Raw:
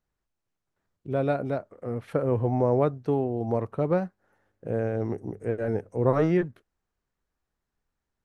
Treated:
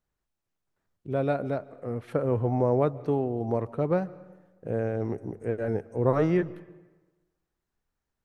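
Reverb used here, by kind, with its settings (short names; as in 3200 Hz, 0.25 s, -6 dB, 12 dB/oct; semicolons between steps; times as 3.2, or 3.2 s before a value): digital reverb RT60 1.2 s, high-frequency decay 0.65×, pre-delay 0.1 s, DRR 19.5 dB; gain -1 dB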